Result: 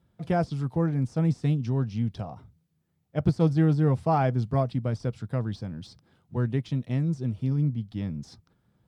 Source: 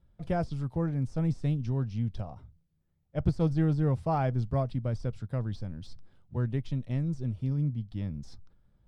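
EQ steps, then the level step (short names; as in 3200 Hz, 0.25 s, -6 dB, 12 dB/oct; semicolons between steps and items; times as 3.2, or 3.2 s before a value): HPF 120 Hz 12 dB/oct; notch 570 Hz, Q 12; +5.5 dB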